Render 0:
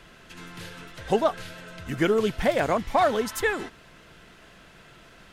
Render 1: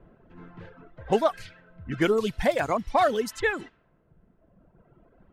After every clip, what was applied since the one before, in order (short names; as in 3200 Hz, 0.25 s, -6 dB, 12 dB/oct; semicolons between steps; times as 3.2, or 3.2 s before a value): low-pass opened by the level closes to 560 Hz, open at -23 dBFS; reverb removal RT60 1.8 s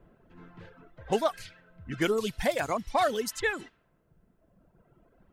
high shelf 3700 Hz +9.5 dB; gain -4.5 dB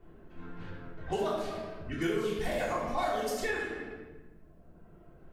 shoebox room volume 640 m³, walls mixed, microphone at 3.4 m; compressor 2:1, threshold -33 dBFS, peak gain reduction 11 dB; gain -3 dB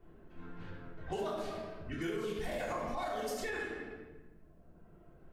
limiter -25 dBFS, peak gain reduction 5 dB; gain -3.5 dB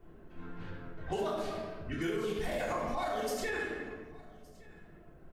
echo 1.166 s -23.5 dB; gain +3 dB